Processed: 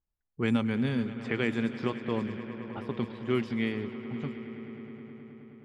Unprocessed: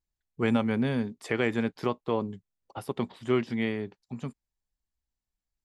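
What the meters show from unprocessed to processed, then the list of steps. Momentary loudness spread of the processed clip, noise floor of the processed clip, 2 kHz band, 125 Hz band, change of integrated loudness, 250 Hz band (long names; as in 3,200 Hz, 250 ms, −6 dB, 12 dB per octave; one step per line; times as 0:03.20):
15 LU, −84 dBFS, −1.0 dB, 0.0 dB, −2.0 dB, −0.5 dB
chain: dynamic equaliser 720 Hz, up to −8 dB, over −43 dBFS, Q 0.94
echo that builds up and dies away 106 ms, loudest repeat 5, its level −17.5 dB
low-pass that shuts in the quiet parts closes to 1,500 Hz, open at −22 dBFS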